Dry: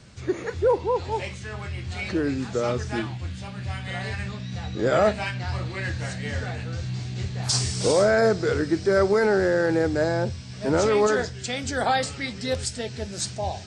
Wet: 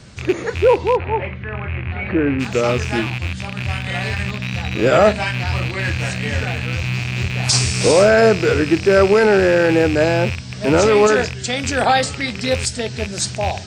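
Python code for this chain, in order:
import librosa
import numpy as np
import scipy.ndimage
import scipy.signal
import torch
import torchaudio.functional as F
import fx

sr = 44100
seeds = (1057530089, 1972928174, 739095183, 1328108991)

y = fx.rattle_buzz(x, sr, strikes_db=-32.0, level_db=-22.0)
y = fx.lowpass(y, sr, hz=2300.0, slope=24, at=(0.95, 2.39), fade=0.02)
y = y * librosa.db_to_amplitude(7.5)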